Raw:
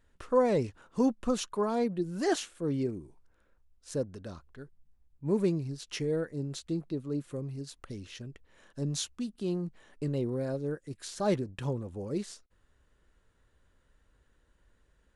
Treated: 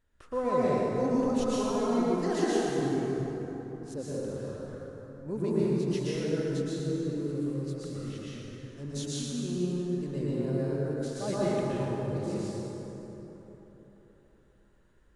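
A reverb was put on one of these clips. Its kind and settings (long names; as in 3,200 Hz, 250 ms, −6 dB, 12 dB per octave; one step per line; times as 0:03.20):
dense smooth reverb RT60 3.9 s, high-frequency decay 0.5×, pre-delay 105 ms, DRR −9 dB
level −7.5 dB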